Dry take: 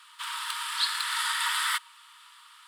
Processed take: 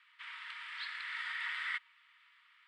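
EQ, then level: band-pass 2100 Hz, Q 4.3; air absorption 51 m; -2.0 dB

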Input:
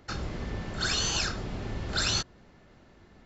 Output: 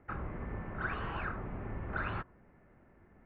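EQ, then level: steep low-pass 2300 Hz 36 dB/oct; dynamic EQ 1100 Hz, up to +7 dB, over -51 dBFS, Q 2; air absorption 95 m; -5.5 dB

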